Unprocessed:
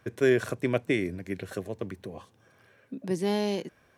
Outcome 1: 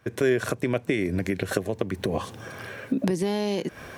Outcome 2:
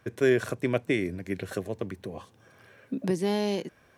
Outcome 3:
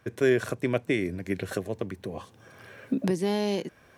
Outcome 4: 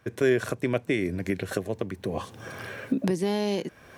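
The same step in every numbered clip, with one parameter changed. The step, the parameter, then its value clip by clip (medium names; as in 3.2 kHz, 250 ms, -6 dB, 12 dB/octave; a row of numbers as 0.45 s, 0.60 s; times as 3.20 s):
recorder AGC, rising by: 82 dB/s, 5.1 dB/s, 13 dB/s, 32 dB/s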